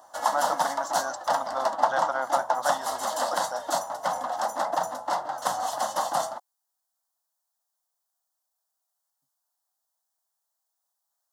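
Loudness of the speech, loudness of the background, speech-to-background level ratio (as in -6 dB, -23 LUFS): -33.0 LUFS, -28.0 LUFS, -5.0 dB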